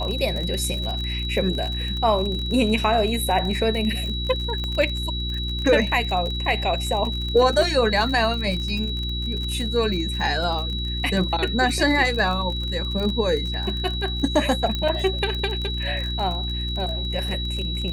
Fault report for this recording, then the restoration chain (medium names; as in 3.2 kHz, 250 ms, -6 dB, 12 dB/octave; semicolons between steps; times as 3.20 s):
crackle 34 per s -27 dBFS
hum 60 Hz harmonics 6 -28 dBFS
whine 3.9 kHz -29 dBFS
4.64 s: pop -17 dBFS
14.75 s: pop -13 dBFS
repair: de-click; band-stop 3.9 kHz, Q 30; de-hum 60 Hz, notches 6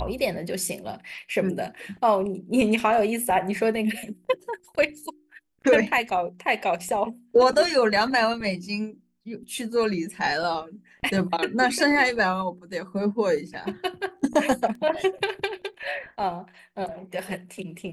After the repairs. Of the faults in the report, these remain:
14.75 s: pop